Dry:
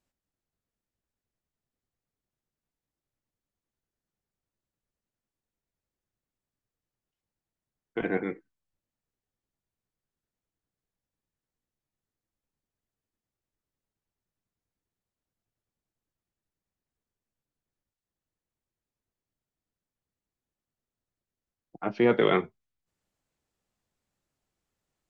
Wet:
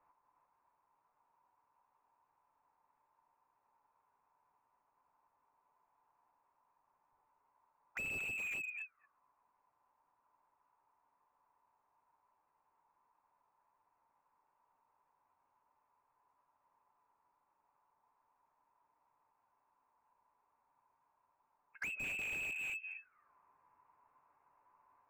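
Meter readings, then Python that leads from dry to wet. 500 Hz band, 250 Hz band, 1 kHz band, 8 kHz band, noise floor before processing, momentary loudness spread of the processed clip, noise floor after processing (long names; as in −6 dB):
−32.5 dB, −29.5 dB, −22.5 dB, can't be measured, below −85 dBFS, 10 LU, −81 dBFS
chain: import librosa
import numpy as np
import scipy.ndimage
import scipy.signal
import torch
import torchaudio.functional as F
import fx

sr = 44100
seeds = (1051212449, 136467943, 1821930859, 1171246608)

p1 = fx.reverse_delay(x, sr, ms=232, wet_db=-5)
p2 = fx.high_shelf(p1, sr, hz=2000.0, db=2.5)
p3 = fx.power_curve(p2, sr, exponent=0.7)
p4 = fx.notch_comb(p3, sr, f0_hz=150.0)
p5 = fx.auto_wah(p4, sr, base_hz=290.0, top_hz=2000.0, q=18.0, full_db=-25.5, direction='down')
p6 = p5 + fx.echo_single(p5, sr, ms=235, db=-11.5, dry=0)
p7 = fx.freq_invert(p6, sr, carrier_hz=2900)
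p8 = fx.slew_limit(p7, sr, full_power_hz=8.3)
y = p8 * 10.0 ** (10.0 / 20.0)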